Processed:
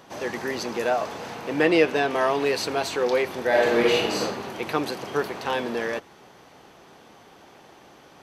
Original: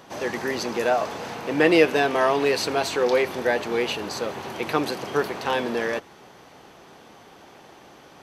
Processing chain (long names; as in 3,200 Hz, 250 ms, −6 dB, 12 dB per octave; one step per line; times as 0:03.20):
0:01.65–0:02.10: high-shelf EQ 11,000 Hz −11 dB
0:03.48–0:04.21: thrown reverb, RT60 1.1 s, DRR −5.5 dB
level −2 dB